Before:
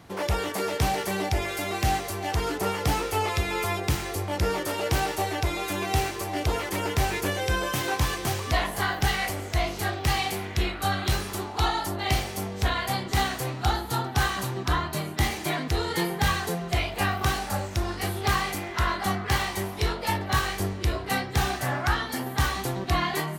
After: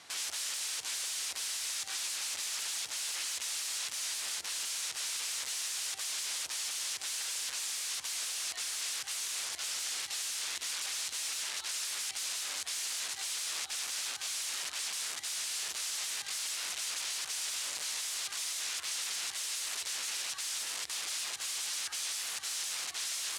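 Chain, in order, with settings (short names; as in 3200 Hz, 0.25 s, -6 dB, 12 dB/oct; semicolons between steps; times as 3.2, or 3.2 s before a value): modulation noise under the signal 18 dB; negative-ratio compressor -28 dBFS, ratio -0.5; wrapped overs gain 32 dB; weighting filter ITU-R 468; gain -7.5 dB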